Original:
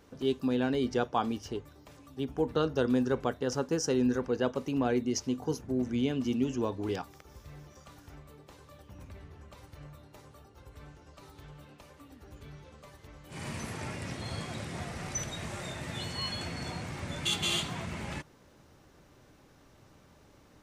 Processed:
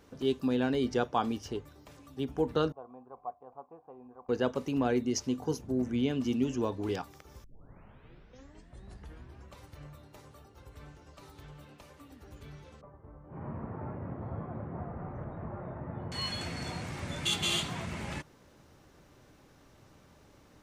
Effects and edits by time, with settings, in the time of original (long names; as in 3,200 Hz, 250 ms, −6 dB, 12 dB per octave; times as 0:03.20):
0:02.72–0:04.29: formant resonators in series a
0:05.56–0:06.09: parametric band 1,200 Hz → 9,800 Hz −8.5 dB 0.64 octaves
0:07.44: tape start 2.12 s
0:12.81–0:16.12: low-pass filter 1,200 Hz 24 dB per octave